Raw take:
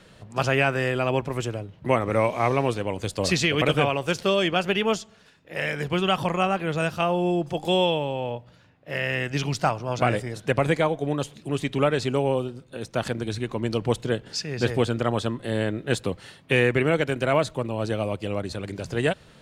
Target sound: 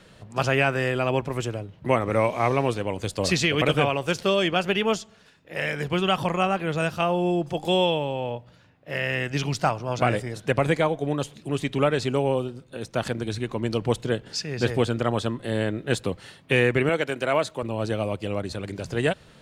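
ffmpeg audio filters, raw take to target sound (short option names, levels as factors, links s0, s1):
-filter_complex "[0:a]asettb=1/sr,asplit=3[s0][s1][s2];[s0]atrim=end=16.894[s3];[s1]atrim=start=16.89:end=17.63,asetpts=PTS-STARTPTS,afade=t=in:d=0.004:c=qsin,afade=t=out:st=0.736:d=0.004:c=qsin,highpass=f=320:p=1[s4];[s2]atrim=start=17.626[s5];[s3][s4]acrossfade=d=0.004:c1=hsin:c2=qsin[s6];[s6][s5]acrossfade=d=0.004:c1=qsin:c2=hsin"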